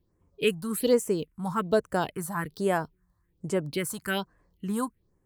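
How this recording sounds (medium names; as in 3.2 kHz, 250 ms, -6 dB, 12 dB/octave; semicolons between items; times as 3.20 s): phasing stages 4, 1.2 Hz, lowest notch 410–4000 Hz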